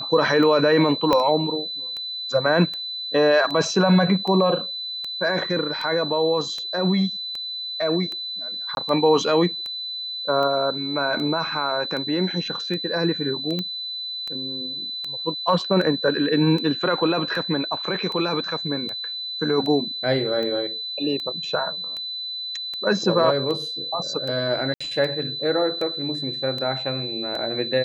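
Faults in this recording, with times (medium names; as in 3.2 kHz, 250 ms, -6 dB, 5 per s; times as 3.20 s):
tick 78 rpm -19 dBFS
whine 4 kHz -28 dBFS
1.13 s: pop -7 dBFS
8.75–8.77 s: dropout 21 ms
13.59 s: pop -14 dBFS
24.74–24.80 s: dropout 65 ms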